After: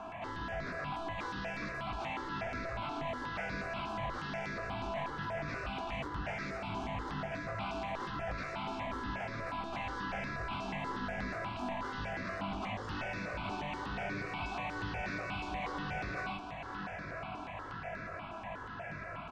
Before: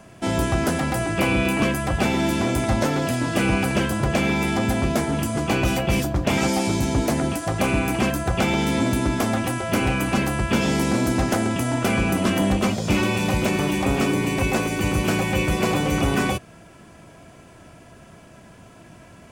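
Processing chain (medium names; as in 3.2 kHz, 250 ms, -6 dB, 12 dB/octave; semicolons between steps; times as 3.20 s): high-order bell 1.3 kHz +12 dB 2.4 oct; compression 2:1, threshold -37 dBFS, peak gain reduction 15 dB; saturation -34.5 dBFS, distortion -7 dB; distance through air 160 m; doubling 20 ms -4 dB; echo that smears into a reverb 597 ms, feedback 71%, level -9.5 dB; stepped phaser 8.3 Hz 520–3000 Hz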